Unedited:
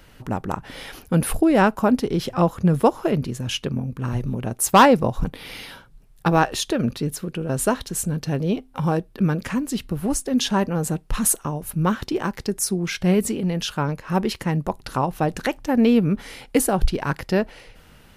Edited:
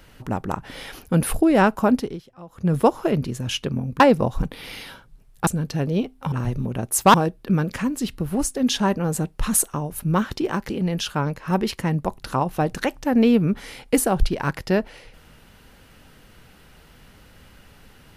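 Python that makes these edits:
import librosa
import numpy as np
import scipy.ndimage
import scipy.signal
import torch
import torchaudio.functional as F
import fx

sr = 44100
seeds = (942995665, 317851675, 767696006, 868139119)

y = fx.edit(x, sr, fx.fade_down_up(start_s=1.94, length_s=0.83, db=-23.0, fade_s=0.28),
    fx.move(start_s=4.0, length_s=0.82, to_s=8.85),
    fx.cut(start_s=6.29, length_s=1.71),
    fx.cut(start_s=12.41, length_s=0.91), tone=tone)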